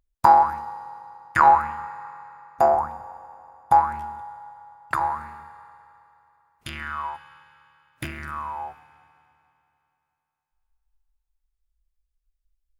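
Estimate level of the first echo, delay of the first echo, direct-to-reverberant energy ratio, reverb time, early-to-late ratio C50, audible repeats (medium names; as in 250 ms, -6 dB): no echo, no echo, 10.0 dB, 2.9 s, 11.0 dB, no echo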